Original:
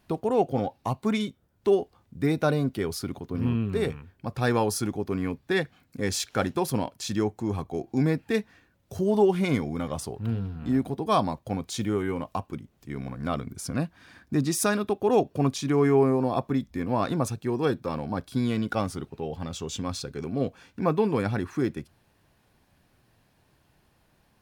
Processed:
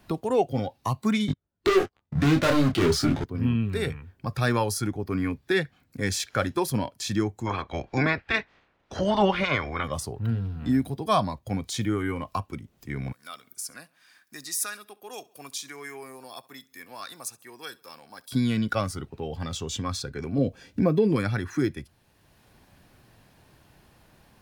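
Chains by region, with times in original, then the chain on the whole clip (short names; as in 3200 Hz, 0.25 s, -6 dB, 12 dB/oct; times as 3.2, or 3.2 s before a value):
1.28–3.24 air absorption 78 m + sample leveller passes 5 + detuned doubles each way 13 cents
7.45–9.83 spectral limiter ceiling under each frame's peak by 22 dB + LPF 2900 Hz
13.12–18.31 differentiator + feedback echo 68 ms, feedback 46%, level -22 dB
20.38–21.16 resonant low shelf 740 Hz +6.5 dB, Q 1.5 + compressor 2:1, threshold -20 dBFS
whole clip: spectral noise reduction 7 dB; three-band squash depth 40%; gain +2.5 dB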